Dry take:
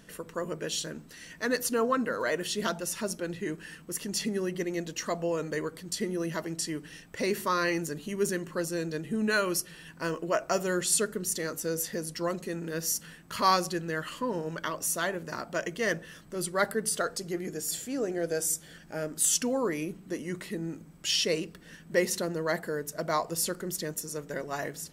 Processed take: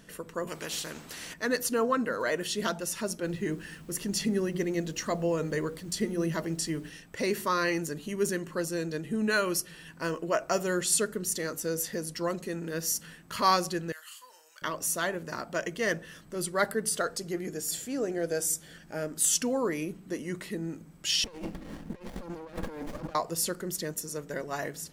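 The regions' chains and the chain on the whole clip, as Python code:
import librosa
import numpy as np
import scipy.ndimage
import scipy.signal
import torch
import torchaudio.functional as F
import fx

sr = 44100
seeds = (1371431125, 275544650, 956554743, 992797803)

y = fx.chain(x, sr, fx.highpass(hz=80.0, slope=6),
    fx.high_shelf(hz=6300.0, db=-6.5),
    fx.spectral_comp(ratio=2.0), at=(0.47, 1.34))
y = fx.low_shelf(y, sr, hz=250.0, db=7.5, at=(3.22, 6.89), fade=0.02)
y = fx.hum_notches(y, sr, base_hz=60, count=10, at=(3.22, 6.89), fade=0.02)
y = fx.dmg_noise_colour(y, sr, seeds[0], colour='pink', level_db=-61.0, at=(3.22, 6.89), fade=0.02)
y = fx.chain(y, sr, fx.highpass(hz=750.0, slope=12),
    fx.differentiator(),
    fx.room_flutter(wall_m=5.4, rt60_s=0.2), at=(13.92, 14.62))
y = fx.chain(y, sr, fx.comb(ms=3.7, depth=0.77),
    fx.over_compress(threshold_db=-39.0, ratio=-1.0),
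    fx.running_max(window=33), at=(21.24, 23.15))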